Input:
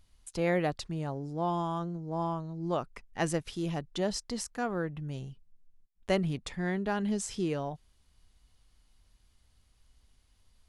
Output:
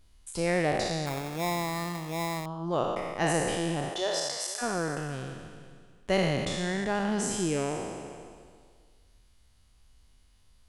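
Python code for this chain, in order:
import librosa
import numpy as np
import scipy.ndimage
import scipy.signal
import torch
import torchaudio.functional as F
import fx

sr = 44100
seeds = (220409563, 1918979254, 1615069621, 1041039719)

y = fx.spec_trails(x, sr, decay_s=1.87)
y = fx.highpass(y, sr, hz=fx.line((3.89, 290.0), (4.61, 900.0)), slope=24, at=(3.89, 4.61), fade=0.02)
y = y + 10.0 ** (-19.0 / 20.0) * np.pad(y, (int(481 * sr / 1000.0), 0))[:len(y)]
y = fx.sample_hold(y, sr, seeds[0], rate_hz=3000.0, jitter_pct=0, at=(1.06, 2.46))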